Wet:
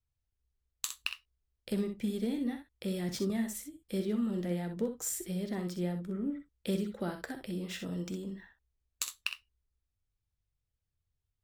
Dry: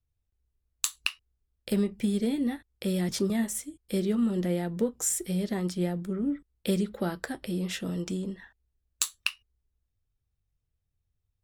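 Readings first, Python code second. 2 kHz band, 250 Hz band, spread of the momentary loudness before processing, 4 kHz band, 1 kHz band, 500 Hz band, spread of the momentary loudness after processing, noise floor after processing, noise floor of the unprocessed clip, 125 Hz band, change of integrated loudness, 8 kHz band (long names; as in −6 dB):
−5.5 dB, −5.5 dB, 7 LU, −6.0 dB, −5.5 dB, −5.5 dB, 7 LU, below −85 dBFS, −81 dBFS, −5.5 dB, −6.0 dB, −8.0 dB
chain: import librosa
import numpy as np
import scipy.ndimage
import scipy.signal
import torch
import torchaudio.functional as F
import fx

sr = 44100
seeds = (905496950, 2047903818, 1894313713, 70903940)

p1 = x + fx.room_early_taps(x, sr, ms=(47, 62), db=(-16.0, -8.5), dry=0)
p2 = np.interp(np.arange(len(p1)), np.arange(len(p1))[::2], p1[::2])
y = F.gain(torch.from_numpy(p2), -6.0).numpy()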